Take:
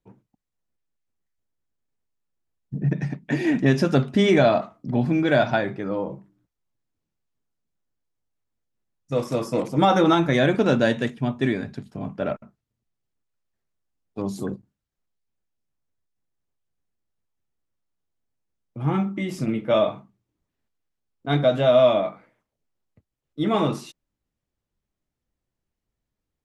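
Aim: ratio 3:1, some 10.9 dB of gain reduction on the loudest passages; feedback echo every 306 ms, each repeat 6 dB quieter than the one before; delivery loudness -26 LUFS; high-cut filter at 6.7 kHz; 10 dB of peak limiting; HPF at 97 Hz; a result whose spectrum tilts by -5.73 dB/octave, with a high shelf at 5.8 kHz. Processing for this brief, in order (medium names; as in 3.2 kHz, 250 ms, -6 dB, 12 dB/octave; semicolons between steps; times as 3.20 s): high-pass 97 Hz; low-pass 6.7 kHz; treble shelf 5.8 kHz +7.5 dB; compression 3:1, threshold -28 dBFS; peak limiter -25.5 dBFS; feedback delay 306 ms, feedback 50%, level -6 dB; trim +9 dB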